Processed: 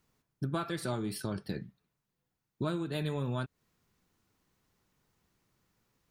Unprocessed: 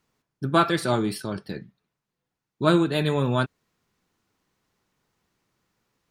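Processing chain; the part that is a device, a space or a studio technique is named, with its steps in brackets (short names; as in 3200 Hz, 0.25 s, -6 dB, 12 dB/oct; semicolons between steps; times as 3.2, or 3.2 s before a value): ASMR close-microphone chain (low shelf 160 Hz +7.5 dB; compressor 10:1, threshold -27 dBFS, peak gain reduction 14.5 dB; high shelf 10000 Hz +7.5 dB); gain -3.5 dB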